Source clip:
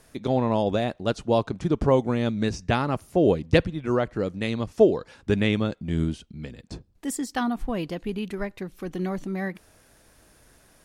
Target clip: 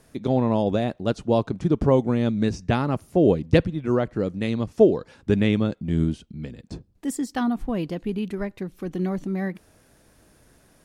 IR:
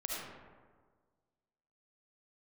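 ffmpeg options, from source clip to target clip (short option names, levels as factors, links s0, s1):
-af "equalizer=f=190:w=0.4:g=6,volume=0.75"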